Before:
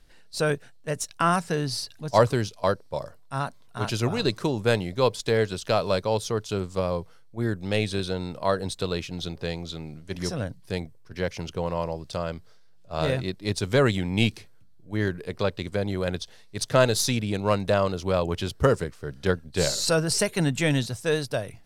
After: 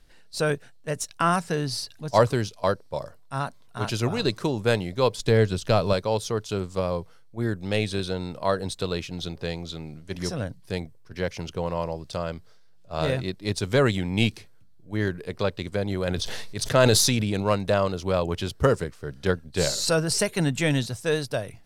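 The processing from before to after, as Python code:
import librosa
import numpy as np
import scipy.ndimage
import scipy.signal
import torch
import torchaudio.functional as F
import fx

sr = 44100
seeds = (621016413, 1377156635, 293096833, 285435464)

y = fx.low_shelf(x, sr, hz=230.0, db=9.5, at=(5.18, 5.93))
y = fx.sustainer(y, sr, db_per_s=21.0, at=(15.9, 17.43), fade=0.02)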